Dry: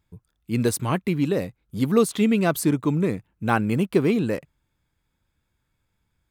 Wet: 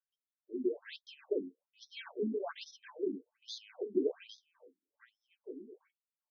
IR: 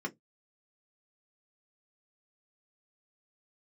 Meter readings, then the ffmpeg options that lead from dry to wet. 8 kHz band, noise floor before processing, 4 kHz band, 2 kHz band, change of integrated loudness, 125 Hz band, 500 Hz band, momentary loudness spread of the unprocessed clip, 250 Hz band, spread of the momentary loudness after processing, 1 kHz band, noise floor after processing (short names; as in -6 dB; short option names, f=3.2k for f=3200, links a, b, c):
-27.0 dB, -75 dBFS, -11.0 dB, -21.0 dB, -16.5 dB, under -30 dB, -12.5 dB, 8 LU, -19.0 dB, 17 LU, -24.0 dB, under -85 dBFS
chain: -filter_complex "[0:a]lowshelf=f=390:g=-4.5,asoftclip=type=tanh:threshold=-12.5dB,bandreject=f=1.5k:w=14,asplit=2[a][b];[b]adelay=1516,volume=-15dB,highshelf=f=4k:g=-34.1[c];[a][c]amix=inputs=2:normalize=0,acrossover=split=2500[d][e];[d]acrusher=samples=16:mix=1:aa=0.000001[f];[f][e]amix=inputs=2:normalize=0,bass=f=250:g=-1,treble=f=4k:g=13,adynamicsmooth=sensitivity=4.5:basefreq=1.3k[g];[1:a]atrim=start_sample=2205,asetrate=61740,aresample=44100[h];[g][h]afir=irnorm=-1:irlink=0,afftfilt=real='re*between(b*sr/1024,270*pow(4800/270,0.5+0.5*sin(2*PI*1.2*pts/sr))/1.41,270*pow(4800/270,0.5+0.5*sin(2*PI*1.2*pts/sr))*1.41)':imag='im*between(b*sr/1024,270*pow(4800/270,0.5+0.5*sin(2*PI*1.2*pts/sr))/1.41,270*pow(4800/270,0.5+0.5*sin(2*PI*1.2*pts/sr))*1.41)':win_size=1024:overlap=0.75,volume=-8.5dB"